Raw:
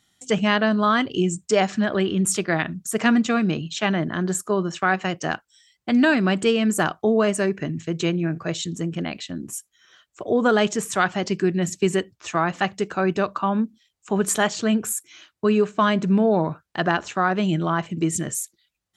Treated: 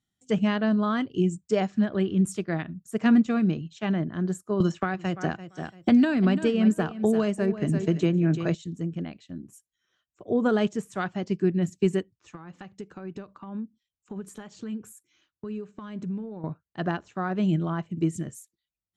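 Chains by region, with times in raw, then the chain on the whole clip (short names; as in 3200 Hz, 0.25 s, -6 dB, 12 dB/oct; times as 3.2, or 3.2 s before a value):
4.6–8.55 feedback echo 0.34 s, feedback 17%, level -12 dB + three-band squash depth 100%
12.15–16.44 compressor 5:1, threshold -25 dBFS + notch 660 Hz, Q 6.7
whole clip: low shelf 420 Hz +11.5 dB; upward expander 1.5:1, over -33 dBFS; gain -8 dB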